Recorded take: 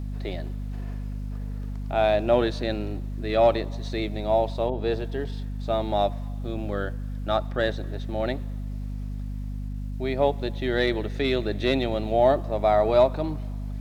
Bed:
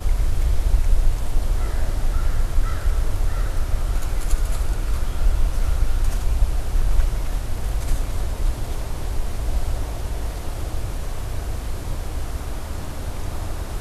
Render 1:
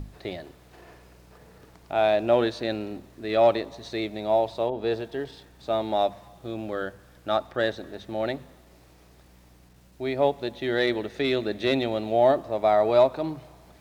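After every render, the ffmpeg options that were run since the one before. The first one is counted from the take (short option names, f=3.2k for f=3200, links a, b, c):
-af "bandreject=f=50:t=h:w=6,bandreject=f=100:t=h:w=6,bandreject=f=150:t=h:w=6,bandreject=f=200:t=h:w=6,bandreject=f=250:t=h:w=6"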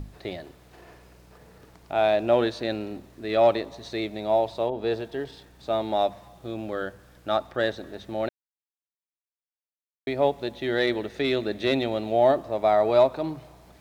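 -filter_complex "[0:a]asplit=3[a][b][c];[a]atrim=end=8.29,asetpts=PTS-STARTPTS,afade=t=out:st=8.286:d=0.004:c=hsin[d];[b]atrim=start=8.29:end=10.07,asetpts=PTS-STARTPTS,volume=0[e];[c]atrim=start=10.07,asetpts=PTS-STARTPTS,afade=t=in:d=0.004:c=hsin[f];[d][e][f]concat=n=3:v=0:a=1"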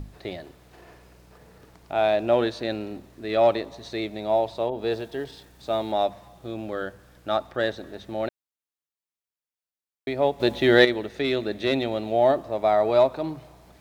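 -filter_complex "[0:a]asettb=1/sr,asplit=3[a][b][c];[a]atrim=end=4.714[d];[b]atrim=start=4.71:end=5.92,asetpts=PTS-STARTPTS,afade=t=in:d=0.004:c=qsin,afade=t=out:st=1.206:d=0.004:c=qsin,highshelf=f=5.4k:g=6[e];[c]atrim=start=5.916[f];[d][e]acrossfade=d=0.004:c1=hsin:c2=qsin[g];[g][f]acrossfade=d=0.004:c1=qsin:c2=hsin,asplit=3[h][i][j];[h]atrim=end=10.402[k];[i]atrim=start=10.398:end=10.852,asetpts=PTS-STARTPTS,volume=9dB[l];[j]atrim=start=10.848[m];[k][l]acrossfade=d=0.004:c1=hsin:c2=hsin[n];[n][m]acrossfade=d=0.004:c1=hsin:c2=hsin"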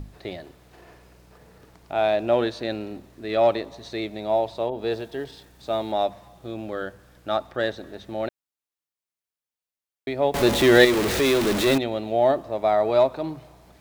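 -filter_complex "[0:a]asettb=1/sr,asplit=3[a][b][c];[a]atrim=end=10.344[d];[b]atrim=start=10.34:end=11.78,asetpts=PTS-STARTPTS,afade=t=in:d=0.004:c=qsin,afade=t=out:st=1.436:d=0.004:c=qsin,aeval=exprs='val(0)+0.5*0.106*sgn(val(0))':c=same[e];[c]atrim=start=11.776[f];[d][e]acrossfade=d=0.004:c1=hsin:c2=qsin[g];[g][f]acrossfade=d=0.004:c1=qsin:c2=hsin"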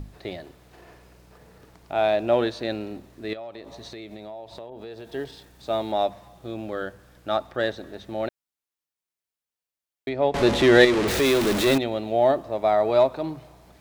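-filter_complex "[0:a]asettb=1/sr,asplit=3[a][b][c];[a]atrim=end=3.334[d];[b]atrim=start=3.33:end=5.11,asetpts=PTS-STARTPTS,afade=t=in:d=0.004:c=qsin,afade=t=out:st=1.776:d=0.004:c=qsin,acompressor=threshold=-35dB:ratio=10:attack=3.2:release=140:knee=1:detection=peak[e];[c]atrim=start=5.106[f];[d][e]acrossfade=d=0.004:c1=hsin:c2=qsin[g];[g][f]acrossfade=d=0.004:c1=qsin:c2=hsin,asettb=1/sr,asplit=3[h][i][j];[h]atrim=end=10.094[k];[i]atrim=start=10.09:end=11.08,asetpts=PTS-STARTPTS,afade=t=in:d=0.004:c=qsin,afade=t=out:st=0.986:d=0.004:c=qsin,adynamicsmooth=sensitivity=0.5:basefreq=6.1k[l];[j]atrim=start=11.076[m];[k][l]acrossfade=d=0.004:c1=hsin:c2=qsin[n];[n][m]acrossfade=d=0.004:c1=qsin:c2=hsin"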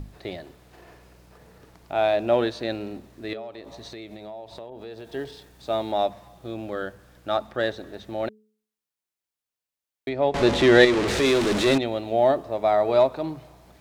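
-filter_complex "[0:a]bandreject=f=214.8:t=h:w=4,bandreject=f=429.6:t=h:w=4,acrossover=split=9800[a][b];[b]acompressor=threshold=-58dB:ratio=4:attack=1:release=60[c];[a][c]amix=inputs=2:normalize=0"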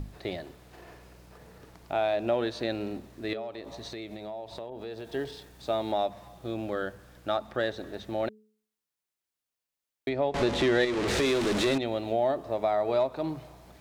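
-af "acompressor=threshold=-26dB:ratio=2.5"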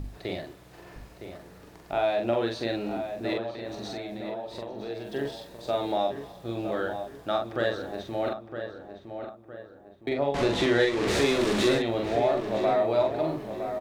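-filter_complex "[0:a]asplit=2[a][b];[b]adelay=43,volume=-3.5dB[c];[a][c]amix=inputs=2:normalize=0,asplit=2[d][e];[e]adelay=962,lowpass=f=2.1k:p=1,volume=-8dB,asplit=2[f][g];[g]adelay=962,lowpass=f=2.1k:p=1,volume=0.45,asplit=2[h][i];[i]adelay=962,lowpass=f=2.1k:p=1,volume=0.45,asplit=2[j][k];[k]adelay=962,lowpass=f=2.1k:p=1,volume=0.45,asplit=2[l][m];[m]adelay=962,lowpass=f=2.1k:p=1,volume=0.45[n];[d][f][h][j][l][n]amix=inputs=6:normalize=0"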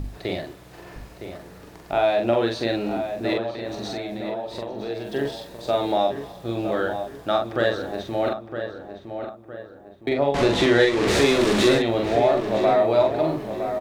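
-af "volume=5.5dB"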